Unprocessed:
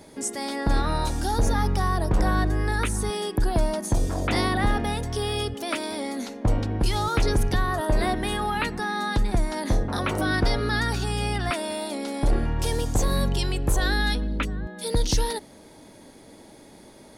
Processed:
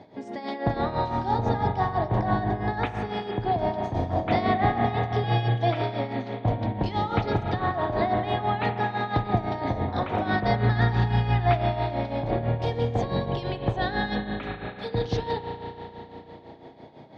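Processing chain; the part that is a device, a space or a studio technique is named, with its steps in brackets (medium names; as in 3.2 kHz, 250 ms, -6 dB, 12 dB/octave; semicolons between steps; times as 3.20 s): combo amplifier with spring reverb and tremolo (spring tank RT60 3.8 s, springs 34 ms, chirp 30 ms, DRR 2 dB; tremolo 6 Hz, depth 68%; cabinet simulation 95–3700 Hz, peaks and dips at 120 Hz +8 dB, 720 Hz +9 dB, 1.4 kHz -5 dB, 2.7 kHz -5 dB); 5.23–5.82 s: comb 6.1 ms, depth 93%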